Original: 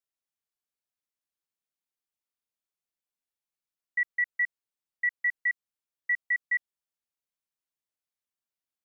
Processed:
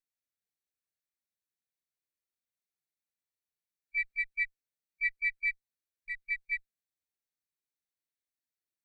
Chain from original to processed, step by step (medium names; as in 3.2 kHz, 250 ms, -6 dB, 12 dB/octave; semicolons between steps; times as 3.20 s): comb filter that takes the minimum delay 0.49 ms; harmony voices +3 st -5 dB; harmonic-percussive split percussive -16 dB; trim +1 dB